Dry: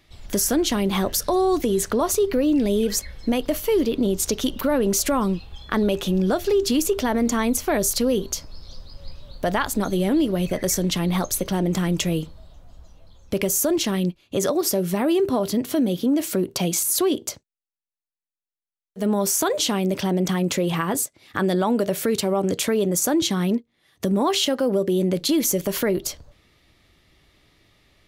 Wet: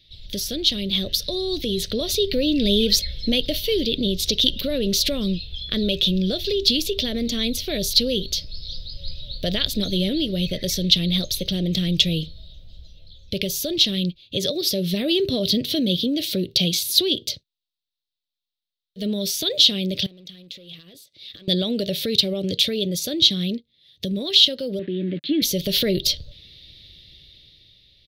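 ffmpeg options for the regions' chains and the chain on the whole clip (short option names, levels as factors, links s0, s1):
-filter_complex "[0:a]asettb=1/sr,asplit=3[s0][s1][s2];[s0]atrim=end=20.064[s3];[s1]atrim=start=20.06:end=21.48,asetpts=PTS-STARTPTS,afade=t=in:d=0.004:c=qsin,afade=t=out:st=1.416:d=0.004:c=qsin,asoftclip=type=hard:threshold=0.133,lowshelf=f=170:g=-11,acompressor=threshold=0.00891:ratio=8:attack=3.2:release=140:knee=1:detection=peak[s4];[s2]atrim=start=21.476[s5];[s3][s4]acrossfade=d=0.004:c1=hsin:c2=qsin[s6];[s6][s5]acrossfade=d=0.004:c1=qsin:c2=hsin,asettb=1/sr,asplit=3[s7][s8][s9];[s7]atrim=end=24.794[s10];[s8]atrim=start=24.79:end=25.42,asetpts=PTS-STARTPTS,afade=t=in:d=0.004:c=qsin,afade=t=out:st=0.626:d=0.004:c=qsin,aeval=exprs='val(0)*gte(abs(val(0)),0.0237)':c=same,highpass=150,equalizer=f=290:t=q:w=4:g=8,equalizer=f=530:t=q:w=4:g=-9,equalizer=f=1700:t=q:w=4:g=7,lowpass=f=2300:w=0.5412,lowpass=f=2300:w=1.3066[s11];[s9]atrim=start=25.416[s12];[s10][s11]acrossfade=d=0.004:c1=hsin:c2=qsin[s13];[s13][s12]acrossfade=d=0.004:c1=qsin:c2=hsin,firequalizer=gain_entry='entry(140,0);entry(260,-9);entry(570,-6);entry(870,-30);entry(1900,-9);entry(3700,14);entry(7200,-14);entry(14000,-5)':delay=0.05:min_phase=1,dynaudnorm=f=180:g=13:m=3.76,volume=0.891"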